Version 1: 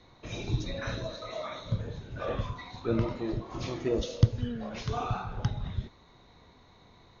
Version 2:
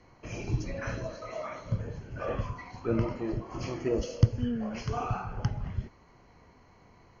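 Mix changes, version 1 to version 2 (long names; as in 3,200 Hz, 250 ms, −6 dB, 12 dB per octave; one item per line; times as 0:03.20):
speech: add spectral tilt −2.5 dB per octave
master: add Butterworth band-reject 3,700 Hz, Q 3.3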